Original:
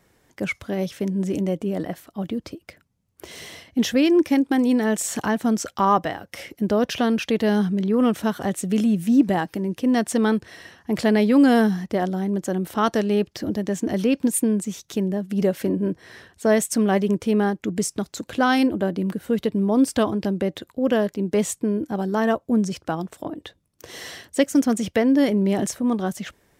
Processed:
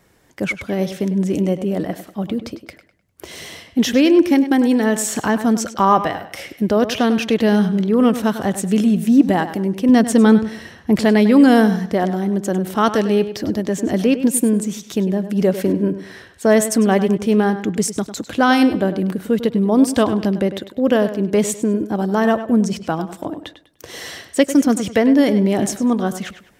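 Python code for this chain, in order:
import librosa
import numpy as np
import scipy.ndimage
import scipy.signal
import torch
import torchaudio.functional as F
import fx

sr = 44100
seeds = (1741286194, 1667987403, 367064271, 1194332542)

p1 = fx.low_shelf(x, sr, hz=230.0, db=8.5, at=(9.89, 10.96))
p2 = p1 + fx.echo_tape(p1, sr, ms=100, feedback_pct=34, wet_db=-11, lp_hz=5400.0, drive_db=6.0, wow_cents=12, dry=0)
y = p2 * librosa.db_to_amplitude(4.5)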